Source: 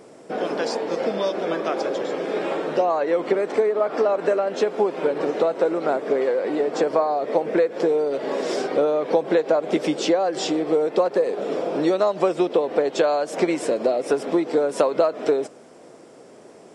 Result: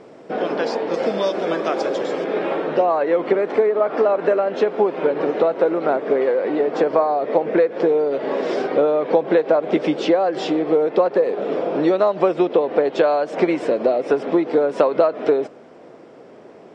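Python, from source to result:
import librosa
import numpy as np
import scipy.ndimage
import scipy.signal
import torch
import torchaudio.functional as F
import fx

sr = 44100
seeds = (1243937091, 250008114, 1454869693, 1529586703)

y = fx.lowpass(x, sr, hz=fx.steps((0.0, 3900.0), (0.94, 7800.0), (2.24, 3200.0)), slope=12)
y = F.gain(torch.from_numpy(y), 3.0).numpy()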